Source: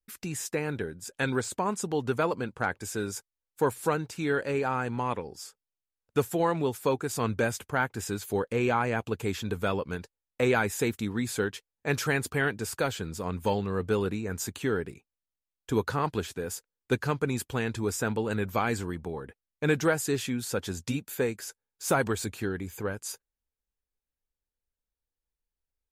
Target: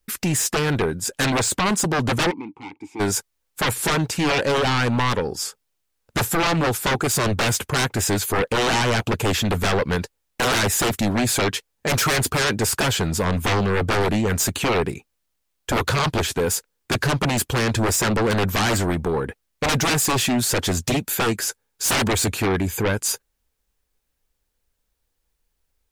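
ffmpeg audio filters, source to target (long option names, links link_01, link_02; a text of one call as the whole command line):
ffmpeg -i in.wav -filter_complex "[0:a]aeval=exprs='0.211*sin(PI/2*5.62*val(0)/0.211)':channel_layout=same,asplit=3[link_01][link_02][link_03];[link_01]afade=type=out:start_time=2.3:duration=0.02[link_04];[link_02]asplit=3[link_05][link_06][link_07];[link_05]bandpass=frequency=300:width_type=q:width=8,volume=0dB[link_08];[link_06]bandpass=frequency=870:width_type=q:width=8,volume=-6dB[link_09];[link_07]bandpass=frequency=2240:width_type=q:width=8,volume=-9dB[link_10];[link_08][link_09][link_10]amix=inputs=3:normalize=0,afade=type=in:start_time=2.3:duration=0.02,afade=type=out:start_time=2.99:duration=0.02[link_11];[link_03]afade=type=in:start_time=2.99:duration=0.02[link_12];[link_04][link_11][link_12]amix=inputs=3:normalize=0,volume=-3dB" out.wav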